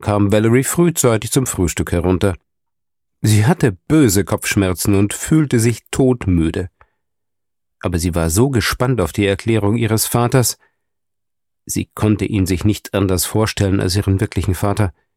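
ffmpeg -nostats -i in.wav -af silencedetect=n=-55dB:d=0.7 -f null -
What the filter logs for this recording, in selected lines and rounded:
silence_start: 2.41
silence_end: 3.23 | silence_duration: 0.82
silence_start: 6.89
silence_end: 7.81 | silence_duration: 0.92
silence_start: 10.69
silence_end: 11.67 | silence_duration: 0.99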